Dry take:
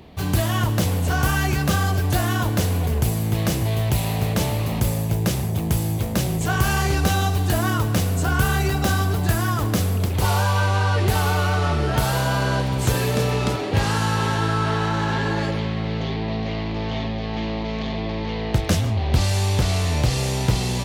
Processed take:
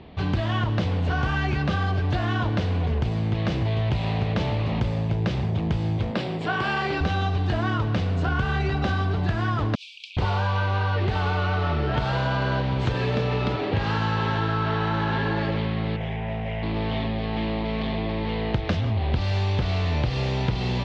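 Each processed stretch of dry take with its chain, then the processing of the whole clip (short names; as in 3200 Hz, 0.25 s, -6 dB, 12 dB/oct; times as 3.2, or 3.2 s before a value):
6.11–7.01 HPF 220 Hz + notch 6300 Hz, Q 5.3
9.75–10.17 Chebyshev high-pass 2300 Hz, order 10 + negative-ratio compressor -34 dBFS, ratio -0.5
15.96–16.63 fixed phaser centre 1200 Hz, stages 6 + overloaded stage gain 23.5 dB
whole clip: LPF 4000 Hz 24 dB/oct; compressor, threshold -20 dBFS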